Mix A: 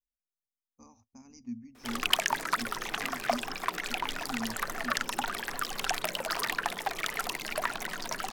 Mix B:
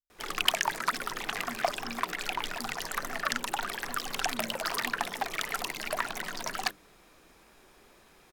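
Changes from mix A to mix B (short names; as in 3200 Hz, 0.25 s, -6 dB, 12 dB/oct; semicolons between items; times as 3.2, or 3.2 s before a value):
speech -5.5 dB; background: entry -1.65 s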